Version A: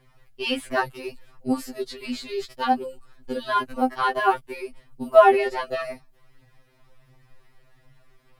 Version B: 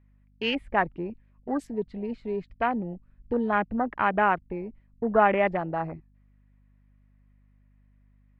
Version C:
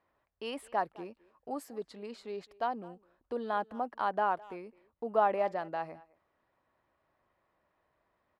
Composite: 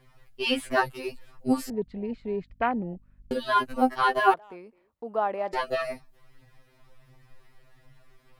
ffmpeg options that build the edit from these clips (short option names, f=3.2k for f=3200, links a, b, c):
-filter_complex "[0:a]asplit=3[a][b][c];[a]atrim=end=1.702[d];[1:a]atrim=start=1.698:end=3.312[e];[b]atrim=start=3.308:end=4.342[f];[2:a]atrim=start=4.338:end=5.532[g];[c]atrim=start=5.528[h];[d][e]acrossfade=d=0.004:c1=hsin:c2=hsin[i];[i][f]acrossfade=d=0.004:c1=hsin:c2=hsin[j];[j][g]acrossfade=d=0.004:c1=hsin:c2=hsin[k];[k][h]acrossfade=d=0.004:c1=hsin:c2=hsin"